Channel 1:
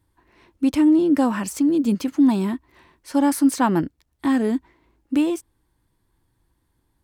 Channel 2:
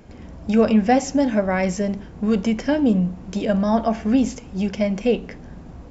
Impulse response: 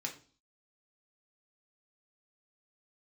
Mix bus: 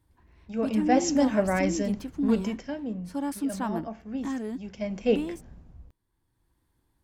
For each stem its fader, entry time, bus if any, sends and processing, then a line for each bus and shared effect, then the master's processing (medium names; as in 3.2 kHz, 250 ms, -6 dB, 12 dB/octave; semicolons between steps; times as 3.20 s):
-3.5 dB, 0.00 s, no send, auto duck -9 dB, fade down 0.35 s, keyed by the second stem
0.66 s -15 dB -> 1.09 s -4 dB -> 2.26 s -4 dB -> 2.85 s -16.5 dB -> 4.51 s -16.5 dB -> 5.12 s -4.5 dB, 0.00 s, no send, three bands expanded up and down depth 70%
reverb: none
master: none